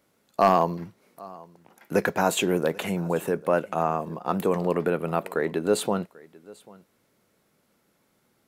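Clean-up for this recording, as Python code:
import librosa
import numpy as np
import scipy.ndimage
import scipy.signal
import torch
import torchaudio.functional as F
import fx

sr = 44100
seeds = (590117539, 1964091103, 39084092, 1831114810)

y = fx.fix_declip(x, sr, threshold_db=-9.0)
y = fx.fix_echo_inverse(y, sr, delay_ms=791, level_db=-23.0)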